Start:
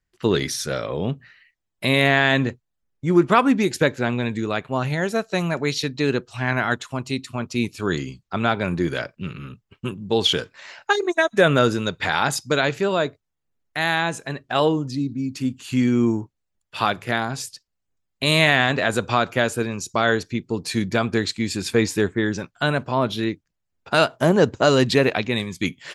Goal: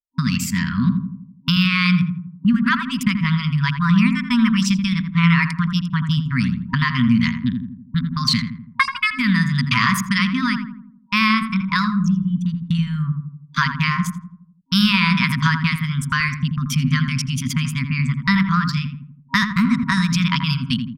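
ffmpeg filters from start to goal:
ffmpeg -i in.wav -filter_complex "[0:a]atempo=0.93,anlmdn=39.8,agate=range=-38dB:threshold=-34dB:ratio=16:detection=peak,bass=frequency=250:gain=7,treble=frequency=4000:gain=-8,acompressor=threshold=-17dB:ratio=20,afftfilt=real='re*(1-between(b*sr/4096,200,720))':imag='im*(1-between(b*sr/4096,200,720))':win_size=4096:overlap=0.75,asetrate=58653,aresample=44100,asplit=2[link_01][link_02];[link_02]adelay=83,lowpass=frequency=1000:poles=1,volume=-4.5dB,asplit=2[link_03][link_04];[link_04]adelay=83,lowpass=frequency=1000:poles=1,volume=0.54,asplit=2[link_05][link_06];[link_06]adelay=83,lowpass=frequency=1000:poles=1,volume=0.54,asplit=2[link_07][link_08];[link_08]adelay=83,lowpass=frequency=1000:poles=1,volume=0.54,asplit=2[link_09][link_10];[link_10]adelay=83,lowpass=frequency=1000:poles=1,volume=0.54,asplit=2[link_11][link_12];[link_12]adelay=83,lowpass=frequency=1000:poles=1,volume=0.54,asplit=2[link_13][link_14];[link_14]adelay=83,lowpass=frequency=1000:poles=1,volume=0.54[link_15];[link_01][link_03][link_05][link_07][link_09][link_11][link_13][link_15]amix=inputs=8:normalize=0,volume=6.5dB" out.wav

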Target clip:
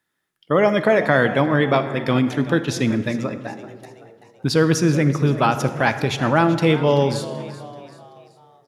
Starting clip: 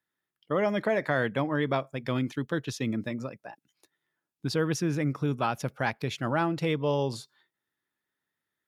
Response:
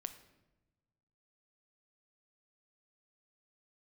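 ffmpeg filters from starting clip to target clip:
-filter_complex "[0:a]asplit=5[link_01][link_02][link_03][link_04][link_05];[link_02]adelay=383,afreqshift=78,volume=-16dB[link_06];[link_03]adelay=766,afreqshift=156,volume=-22.7dB[link_07];[link_04]adelay=1149,afreqshift=234,volume=-29.5dB[link_08];[link_05]adelay=1532,afreqshift=312,volume=-36.2dB[link_09];[link_01][link_06][link_07][link_08][link_09]amix=inputs=5:normalize=0,asplit=2[link_10][link_11];[1:a]atrim=start_sample=2205,asetrate=23814,aresample=44100[link_12];[link_11][link_12]afir=irnorm=-1:irlink=0,volume=9dB[link_13];[link_10][link_13]amix=inputs=2:normalize=0,volume=-1.5dB"

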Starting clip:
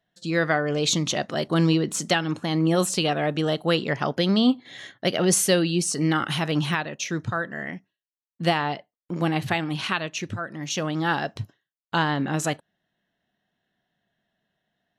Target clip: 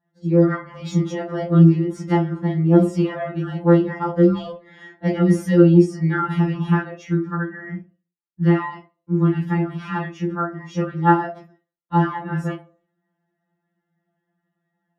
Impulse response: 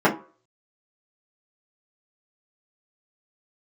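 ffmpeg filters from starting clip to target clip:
-filter_complex "[0:a]asettb=1/sr,asplit=3[link_01][link_02][link_03];[link_01]atrim=end=7.064[link_04];[link_02]atrim=start=7.06:end=9.58,asetpts=PTS-STARTPTS,afade=type=in:duration=0.004:curve=qsin,afade=type=out:start_time=2.516:duration=0.004:curve=qsin,equalizer=frequency=630:width_type=o:width=0.83:gain=-14.5[link_05];[link_03]atrim=start=9.576[link_06];[link_04][link_05]acrossfade=duration=0.004:curve1=hsin:curve2=qsin[link_07];[link_07][link_06]acrossfade=duration=0.004:curve1=qsin:curve2=hsin,asoftclip=type=tanh:threshold=-12dB[link_08];[1:a]atrim=start_sample=2205,afade=type=out:start_time=0.41:duration=0.01,atrim=end_sample=18522[link_09];[link_08][link_09]afir=irnorm=-1:irlink=0,afftfilt=real='re*2.83*eq(mod(b,8),0)':imag='im*2.83*eq(mod(b,8),0)':win_size=2048:overlap=0.75,volume=-17.5dB"

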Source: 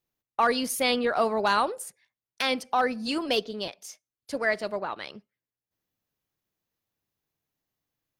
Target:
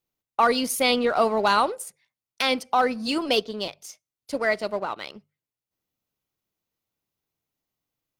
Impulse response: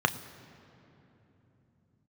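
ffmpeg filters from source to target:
-filter_complex "[0:a]bandreject=frequency=1700:width=8.4,asplit=2[link_01][link_02];[link_02]aeval=exprs='sgn(val(0))*max(abs(val(0))-0.00944,0)':channel_layout=same,volume=-5dB[link_03];[link_01][link_03]amix=inputs=2:normalize=0,bandreject=frequency=50:width_type=h:width=6,bandreject=frequency=100:width_type=h:width=6,bandreject=frequency=150:width_type=h:width=6"

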